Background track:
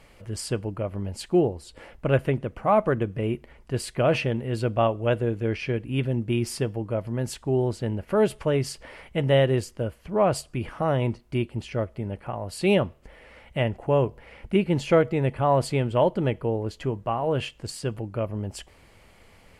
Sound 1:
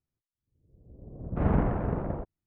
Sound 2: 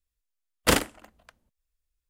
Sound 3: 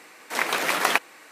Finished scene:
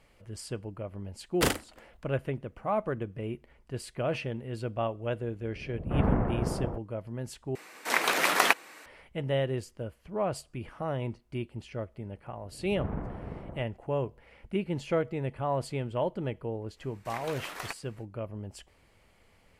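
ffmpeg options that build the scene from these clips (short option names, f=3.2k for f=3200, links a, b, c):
-filter_complex "[1:a]asplit=2[a][b];[3:a]asplit=2[c][d];[0:a]volume=-9dB[e];[a]bass=f=250:g=-1,treble=f=4k:g=-8[f];[d]aeval=exprs='(tanh(2.24*val(0)+0.3)-tanh(0.3))/2.24':c=same[g];[e]asplit=2[h][i];[h]atrim=end=7.554[j];[c]atrim=end=1.31,asetpts=PTS-STARTPTS,volume=-1.5dB[k];[i]atrim=start=8.856[l];[2:a]atrim=end=2.09,asetpts=PTS-STARTPTS,volume=-6dB,afade=t=in:d=0.004:c=hsin,afade=t=out:st=2.086:d=0.004:c=hsin,adelay=740[m];[f]atrim=end=2.46,asetpts=PTS-STARTPTS,volume=-0.5dB,afade=t=in:d=0.004:c=hsin,afade=t=out:st=2.456:d=0.004:c=hsin,adelay=4540[n];[b]atrim=end=2.46,asetpts=PTS-STARTPTS,volume=-10.5dB,afade=t=in:d=0.004:c=hsin,afade=t=out:st=2.456:d=0.004:c=hsin,adelay=11390[o];[g]atrim=end=1.31,asetpts=PTS-STARTPTS,volume=-16dB,afade=t=in:d=0.05,afade=t=out:st=1.26:d=0.05,adelay=16750[p];[j][k]acrossfade=d=0.004:c1=hsin:c2=hsin[q];[q][l]acrossfade=d=0.004:c1=hsin:c2=hsin[r];[r][m][n][o][p]amix=inputs=5:normalize=0"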